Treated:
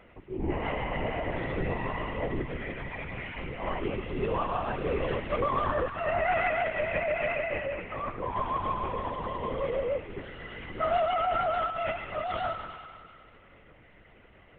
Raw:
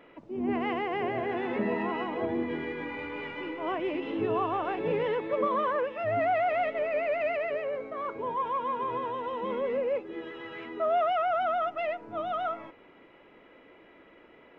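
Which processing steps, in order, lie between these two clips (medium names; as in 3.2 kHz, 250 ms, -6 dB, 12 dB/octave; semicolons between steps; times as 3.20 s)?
reverb removal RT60 0.55 s; feedback echo behind a high-pass 97 ms, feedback 74%, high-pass 1.5 kHz, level -3 dB; LPC vocoder at 8 kHz whisper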